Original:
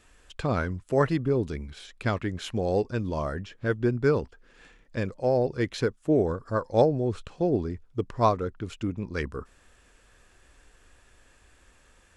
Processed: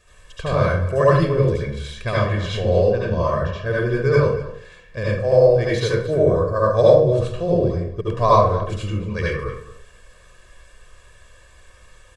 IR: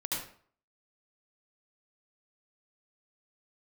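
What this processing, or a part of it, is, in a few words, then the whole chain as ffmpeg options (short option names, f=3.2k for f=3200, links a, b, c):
microphone above a desk: -filter_complex "[0:a]asettb=1/sr,asplit=3[a][b][c];[a]atrim=end=2.334[d];[b]atrim=start=2.33:end=3.53,asetpts=PTS-STARTPTS,afade=t=in:d=0.004:c=qsin,afade=t=out:st=1.196:d=0.004:c=qsin,lowpass=5.5k[e];[c]atrim=start=3.526[f];[d][e]acrossfade=d=0.004:c1=hsin:c2=qsin[g];[g][f]acrossfade=d=0.004:c1=qsin:c2=hsin,aecho=1:1:1.8:0.82,asplit=2[h][i];[i]adelay=227.4,volume=-15dB,highshelf=f=4k:g=-5.12[j];[h][j]amix=inputs=2:normalize=0[k];[1:a]atrim=start_sample=2205[l];[k][l]afir=irnorm=-1:irlink=0,volume=2dB"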